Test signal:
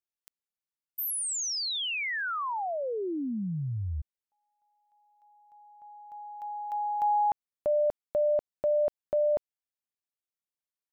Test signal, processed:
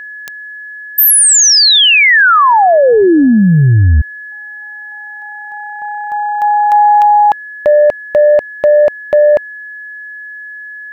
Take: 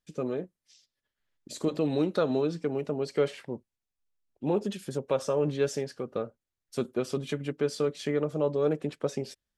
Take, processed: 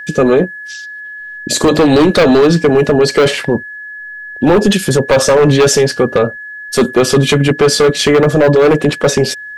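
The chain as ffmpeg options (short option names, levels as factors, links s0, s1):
-af "aeval=exprs='val(0)+0.00251*sin(2*PI*1700*n/s)':c=same,aeval=exprs='0.0944*(abs(mod(val(0)/0.0944+3,4)-2)-1)':c=same,apsyclip=33.5,volume=0.631"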